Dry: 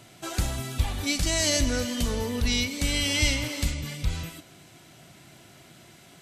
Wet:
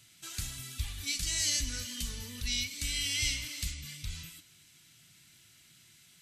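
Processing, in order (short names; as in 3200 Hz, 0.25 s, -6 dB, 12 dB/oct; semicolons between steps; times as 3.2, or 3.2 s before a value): bell 710 Hz -11.5 dB 1.5 oct; flange 1.1 Hz, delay 1.5 ms, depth 7.4 ms, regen -60%; passive tone stack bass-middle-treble 5-5-5; gain +7 dB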